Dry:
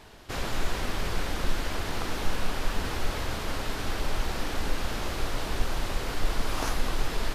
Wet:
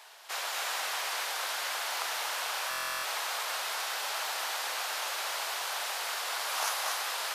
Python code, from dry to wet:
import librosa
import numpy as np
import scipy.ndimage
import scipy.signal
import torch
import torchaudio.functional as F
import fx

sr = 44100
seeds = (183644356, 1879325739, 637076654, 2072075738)

y = scipy.signal.sosfilt(scipy.signal.butter(4, 680.0, 'highpass', fs=sr, output='sos'), x)
y = fx.high_shelf(y, sr, hz=5500.0, db=6.5)
y = y + 10.0 ** (-4.0 / 20.0) * np.pad(y, (int(237 * sr / 1000.0), 0))[:len(y)]
y = fx.buffer_glitch(y, sr, at_s=(2.69,), block=1024, repeats=14)